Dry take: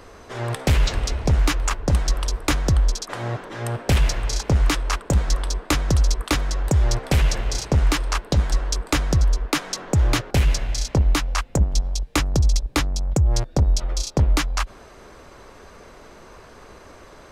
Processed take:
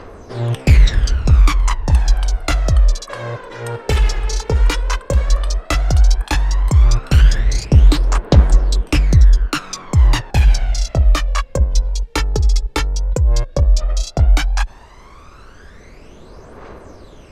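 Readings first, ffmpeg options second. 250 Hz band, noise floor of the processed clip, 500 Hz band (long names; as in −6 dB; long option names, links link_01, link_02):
+2.0 dB, −40 dBFS, +3.0 dB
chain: -af "aphaser=in_gain=1:out_gain=1:delay=2.4:decay=0.64:speed=0.12:type=triangular,highshelf=frequency=8600:gain=-8.5,volume=1dB"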